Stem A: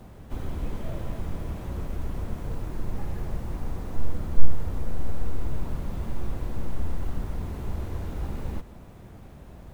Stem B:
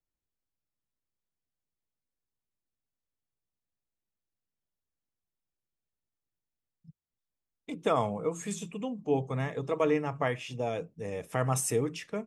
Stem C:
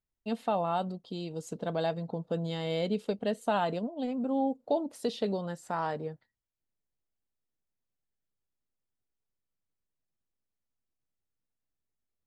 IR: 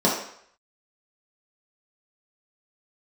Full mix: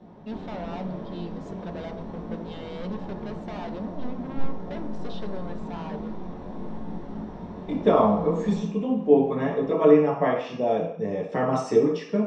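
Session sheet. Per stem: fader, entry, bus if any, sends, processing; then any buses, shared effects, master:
−8.5 dB, 0.00 s, send −10 dB, parametric band 880 Hz +4.5 dB 0.56 octaves; chorus effect 0.86 Hz, delay 17.5 ms, depth 4.5 ms
−8.0 dB, 0.00 s, send −4.5 dB, no processing
−3.5 dB, 0.00 s, send −22 dB, hard clipping −34.5 dBFS, distortion −5 dB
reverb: on, RT60 0.65 s, pre-delay 3 ms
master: low-pass filter 5,100 Hz 24 dB per octave

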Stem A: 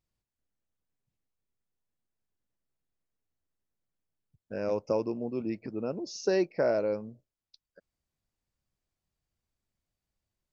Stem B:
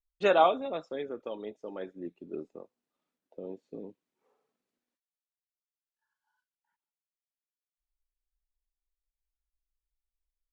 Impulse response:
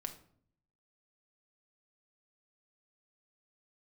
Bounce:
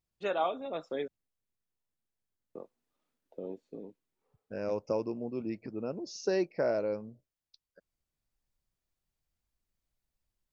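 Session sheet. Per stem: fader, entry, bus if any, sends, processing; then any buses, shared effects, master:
−3.0 dB, 0.00 s, no send, no processing
−4.0 dB, 0.00 s, muted 0:01.08–0:02.55, no send, speech leveller within 5 dB 0.5 s; automatic ducking −9 dB, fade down 1.10 s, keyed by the first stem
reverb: not used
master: no processing

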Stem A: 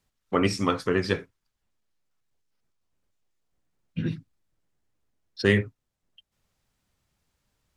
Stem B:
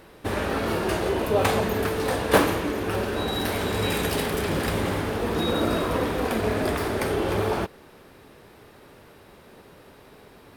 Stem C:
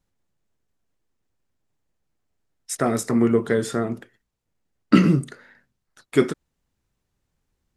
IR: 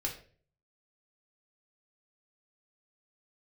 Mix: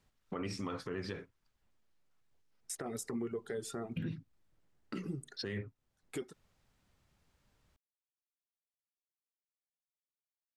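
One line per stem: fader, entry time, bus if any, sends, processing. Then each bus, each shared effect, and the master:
+2.5 dB, 0.00 s, no bus, no send, high-shelf EQ 4,500 Hz −7 dB; brickwall limiter −16 dBFS, peak gain reduction 9 dB; downward compressor 3 to 1, threshold −40 dBFS, peak gain reduction 13.5 dB
muted
−12.5 dB, 0.00 s, bus A, no send, high-shelf EQ 5,200 Hz +5 dB; noise gate −42 dBFS, range −19 dB; reverb reduction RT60 1.1 s
bus A: 0.0 dB, hollow resonant body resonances 400/780 Hz, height 8 dB; downward compressor 6 to 1, threshold −34 dBFS, peak gain reduction 15 dB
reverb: not used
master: brickwall limiter −29.5 dBFS, peak gain reduction 8 dB

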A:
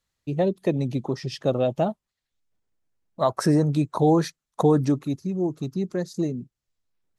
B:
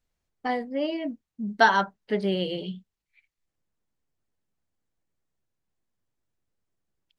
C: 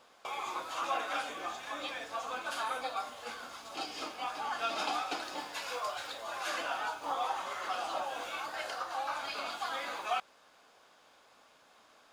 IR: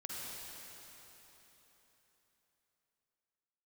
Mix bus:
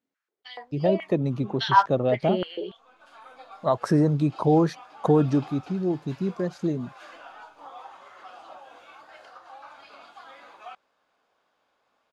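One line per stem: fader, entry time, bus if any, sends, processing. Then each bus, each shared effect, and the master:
−0.5 dB, 0.45 s, no send, no processing
−2.0 dB, 0.00 s, no send, high-pass on a step sequencer 7 Hz 260–5,300 Hz
−8.5 dB, 0.55 s, no send, automatic ducking −12 dB, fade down 1.25 s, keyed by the second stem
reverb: not used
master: low-pass filter 2,600 Hz 6 dB per octave

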